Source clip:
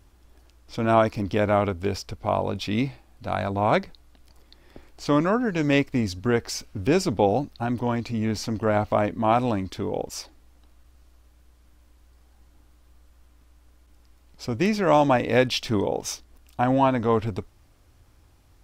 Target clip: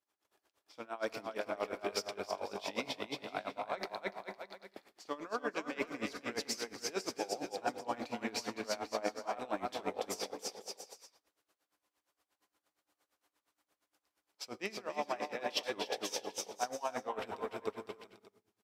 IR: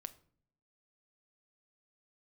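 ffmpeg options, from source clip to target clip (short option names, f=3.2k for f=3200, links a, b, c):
-filter_complex "[0:a]agate=range=-33dB:threshold=-44dB:ratio=3:detection=peak,highpass=490,areverse,acompressor=threshold=-35dB:ratio=8,areverse,aecho=1:1:290|507.5|670.6|793|884.7:0.631|0.398|0.251|0.158|0.1[a];[1:a]atrim=start_sample=2205,asetrate=29106,aresample=44100[b];[a][b]afir=irnorm=-1:irlink=0,aeval=exprs='val(0)*pow(10,-20*(0.5-0.5*cos(2*PI*8.6*n/s))/20)':c=same,volume=6dB"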